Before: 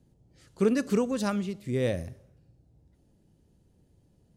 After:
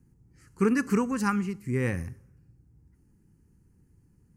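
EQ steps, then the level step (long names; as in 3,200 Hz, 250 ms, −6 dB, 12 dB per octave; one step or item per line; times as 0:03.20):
dynamic equaliser 2,800 Hz, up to +4 dB, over −48 dBFS, Q 0.78
dynamic equaliser 840 Hz, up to +6 dB, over −44 dBFS, Q 1.1
phaser with its sweep stopped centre 1,500 Hz, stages 4
+3.0 dB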